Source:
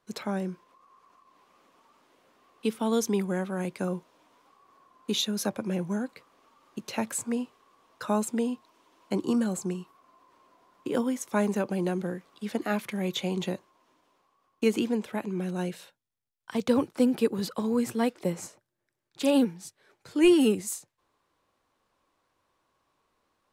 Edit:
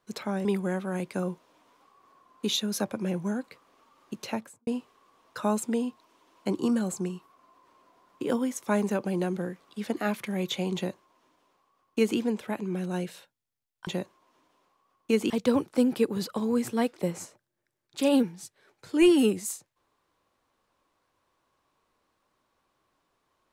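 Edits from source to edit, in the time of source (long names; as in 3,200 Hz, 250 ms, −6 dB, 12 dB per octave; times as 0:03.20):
0:00.45–0:03.10: remove
0:06.87–0:07.32: fade out and dull
0:13.40–0:14.83: duplicate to 0:16.52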